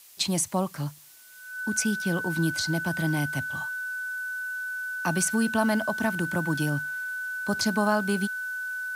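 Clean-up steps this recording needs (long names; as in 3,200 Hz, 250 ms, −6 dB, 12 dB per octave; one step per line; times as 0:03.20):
notch filter 1,500 Hz, Q 30
broadband denoise 30 dB, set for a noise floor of −42 dBFS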